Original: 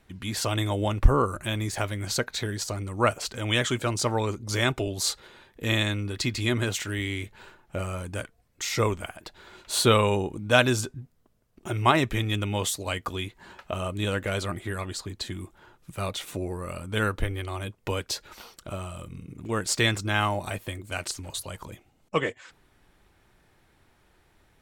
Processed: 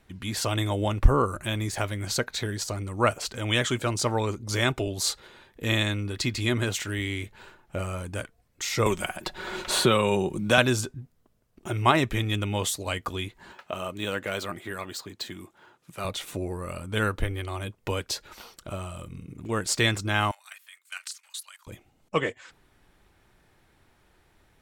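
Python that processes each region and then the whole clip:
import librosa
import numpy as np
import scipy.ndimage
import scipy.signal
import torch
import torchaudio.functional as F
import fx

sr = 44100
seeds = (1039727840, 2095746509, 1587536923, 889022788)

y = fx.chain(x, sr, fx.comb(ms=5.4, depth=0.45),
    fx.band_squash(depth_pct=70), at=(8.86, 10.58))
y = fx.chain(y, sr, fx.highpass(hz=140.0, slope=12),
    fx.low_shelf(hz=440.0, db=-4.0),
    fx.resample_linear(factor=2), at=(13.52, 16.05))
y = fx.chain(y, sr, fx.highpass(hz=1300.0, slope=24),
    fx.level_steps(step_db=12), at=(20.31, 21.67))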